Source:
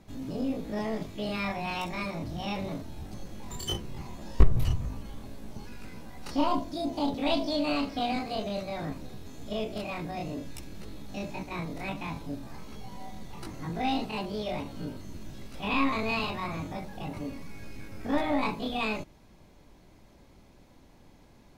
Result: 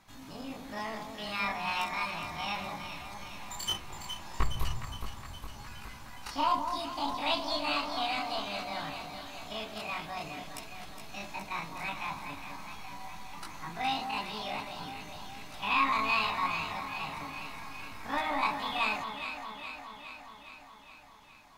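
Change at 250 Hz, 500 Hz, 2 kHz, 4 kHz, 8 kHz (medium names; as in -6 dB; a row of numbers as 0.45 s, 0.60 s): -10.5 dB, -7.0 dB, +3.0 dB, +2.5 dB, +2.0 dB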